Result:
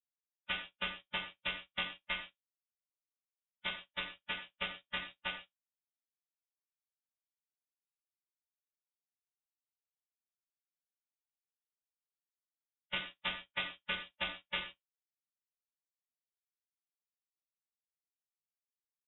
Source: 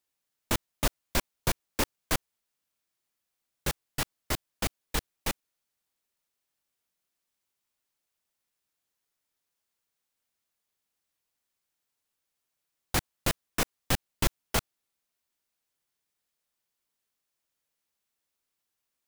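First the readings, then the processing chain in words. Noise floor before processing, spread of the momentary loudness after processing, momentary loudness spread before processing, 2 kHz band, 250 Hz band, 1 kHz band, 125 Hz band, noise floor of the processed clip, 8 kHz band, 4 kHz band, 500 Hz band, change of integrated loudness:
-84 dBFS, 5 LU, 6 LU, -2.0 dB, -16.5 dB, -9.0 dB, -21.0 dB, under -85 dBFS, under -40 dB, -3.0 dB, -13.0 dB, -7.0 dB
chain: partials quantised in pitch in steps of 2 st; high-pass 100 Hz; bass shelf 320 Hz -9.5 dB; flutter echo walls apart 5.9 m, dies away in 0.23 s; compression 5:1, threshold -28 dBFS, peak gain reduction 11 dB; power-law waveshaper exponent 2; harmonic-percussive split harmonic -17 dB; distance through air 200 m; gated-style reverb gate 160 ms falling, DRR 1.5 dB; frequency inversion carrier 3.7 kHz; tape noise reduction on one side only encoder only; trim +11 dB

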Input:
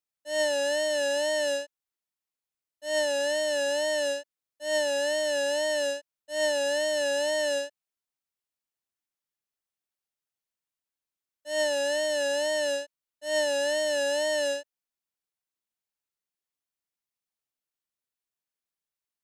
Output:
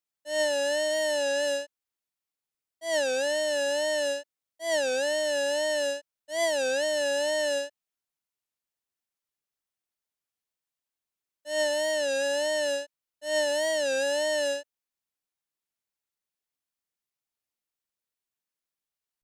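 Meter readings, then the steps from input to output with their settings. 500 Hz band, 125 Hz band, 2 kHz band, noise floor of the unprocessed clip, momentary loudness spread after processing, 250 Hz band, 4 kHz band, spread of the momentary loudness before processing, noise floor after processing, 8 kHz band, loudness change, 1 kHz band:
0.0 dB, no reading, 0.0 dB, under -85 dBFS, 8 LU, 0.0 dB, -0.5 dB, 8 LU, under -85 dBFS, 0.0 dB, 0.0 dB, +0.5 dB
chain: warped record 33 1/3 rpm, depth 160 cents

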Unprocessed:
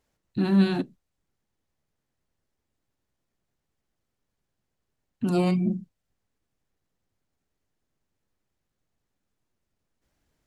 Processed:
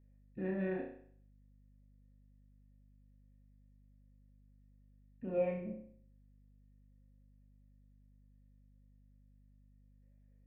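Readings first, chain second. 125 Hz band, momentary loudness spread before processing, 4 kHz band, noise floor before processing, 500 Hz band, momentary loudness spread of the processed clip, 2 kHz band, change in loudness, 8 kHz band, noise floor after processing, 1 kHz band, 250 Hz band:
-17.5 dB, 14 LU, under -30 dB, -82 dBFS, -6.0 dB, 15 LU, -11.0 dB, -14.0 dB, no reading, -64 dBFS, -15.0 dB, -17.5 dB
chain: cascade formant filter e; flutter echo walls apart 5.5 m, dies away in 0.57 s; hum 50 Hz, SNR 18 dB

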